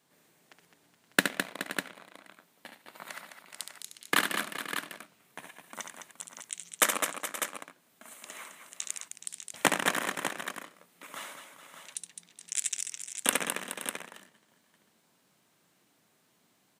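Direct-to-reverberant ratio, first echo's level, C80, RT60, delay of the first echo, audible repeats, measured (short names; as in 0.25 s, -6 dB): none, -7.0 dB, none, none, 69 ms, 5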